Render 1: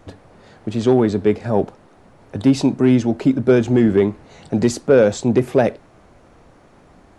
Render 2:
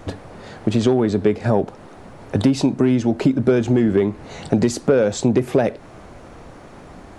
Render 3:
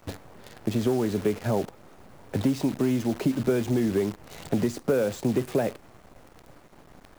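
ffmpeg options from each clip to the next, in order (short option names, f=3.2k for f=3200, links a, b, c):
-af "acompressor=threshold=-22dB:ratio=6,volume=8.5dB"
-filter_complex "[0:a]acrossover=split=190|970|2300[a][b][c][d];[d]alimiter=level_in=1dB:limit=-24dB:level=0:latency=1:release=198,volume=-1dB[e];[a][b][c][e]amix=inputs=4:normalize=0,acrusher=bits=6:dc=4:mix=0:aa=0.000001,volume=-8dB"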